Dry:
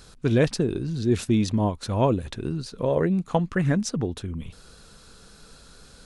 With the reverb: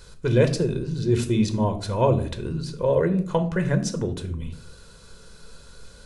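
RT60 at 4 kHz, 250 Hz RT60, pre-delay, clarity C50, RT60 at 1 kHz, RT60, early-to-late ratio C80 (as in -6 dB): 0.35 s, 0.90 s, 4 ms, 13.5 dB, 0.45 s, 0.55 s, 16.5 dB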